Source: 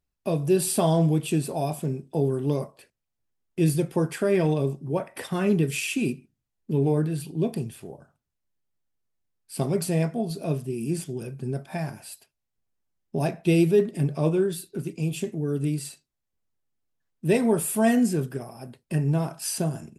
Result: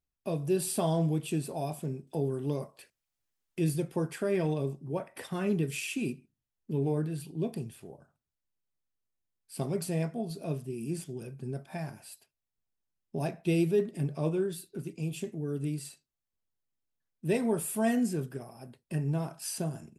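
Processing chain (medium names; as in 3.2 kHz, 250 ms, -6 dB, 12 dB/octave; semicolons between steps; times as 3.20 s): 2.07–3.72 s: tape noise reduction on one side only encoder only; trim -7 dB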